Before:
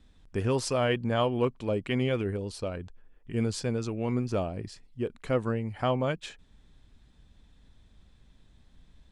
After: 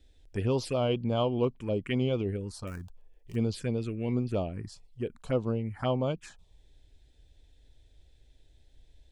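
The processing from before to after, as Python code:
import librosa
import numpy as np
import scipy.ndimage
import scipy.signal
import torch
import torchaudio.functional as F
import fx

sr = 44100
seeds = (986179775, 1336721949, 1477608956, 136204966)

y = fx.dead_time(x, sr, dead_ms=0.091, at=(2.67, 3.36))
y = fx.env_phaser(y, sr, low_hz=180.0, high_hz=1800.0, full_db=-24.0)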